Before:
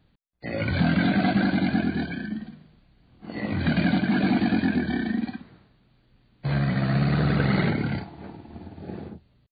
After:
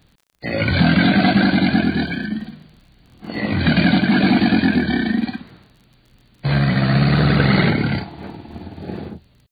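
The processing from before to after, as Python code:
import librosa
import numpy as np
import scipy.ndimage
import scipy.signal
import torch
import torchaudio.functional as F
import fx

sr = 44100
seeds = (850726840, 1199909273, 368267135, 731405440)

y = fx.high_shelf(x, sr, hz=3000.0, db=8.0)
y = fx.dmg_crackle(y, sr, seeds[0], per_s=38.0, level_db=-48.0)
y = y * 10.0 ** (7.0 / 20.0)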